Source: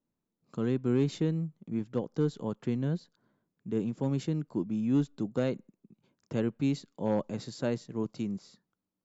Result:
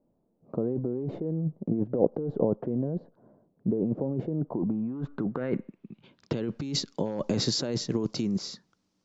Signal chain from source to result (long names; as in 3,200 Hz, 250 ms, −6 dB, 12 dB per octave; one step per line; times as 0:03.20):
compressor whose output falls as the input rises −37 dBFS, ratio −1
low-pass filter sweep 640 Hz → 5,600 Hz, 0:04.36–0:06.65
dynamic equaliser 380 Hz, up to +4 dB, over −49 dBFS, Q 1.1
level +5.5 dB